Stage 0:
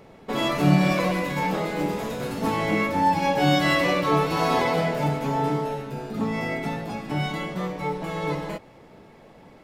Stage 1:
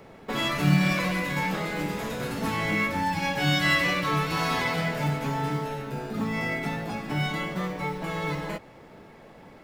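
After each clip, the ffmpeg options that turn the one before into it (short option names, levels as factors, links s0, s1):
-filter_complex "[0:a]equalizer=f=1600:w=1.5:g=3.5,acrossover=split=210|1300[s0][s1][s2];[s1]acompressor=threshold=0.0251:ratio=6[s3];[s0][s3][s2]amix=inputs=3:normalize=0,acrusher=bits=8:mode=log:mix=0:aa=0.000001"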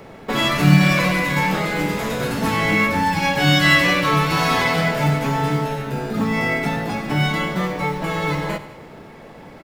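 -af "aecho=1:1:95|190|285|380|475:0.178|0.0996|0.0558|0.0312|0.0175,volume=2.51"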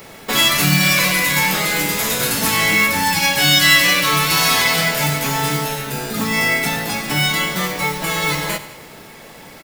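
-filter_complex "[0:a]crystalizer=i=7.5:c=0,asplit=2[s0][s1];[s1]alimiter=limit=0.631:level=0:latency=1:release=387,volume=1.33[s2];[s0][s2]amix=inputs=2:normalize=0,volume=0.335"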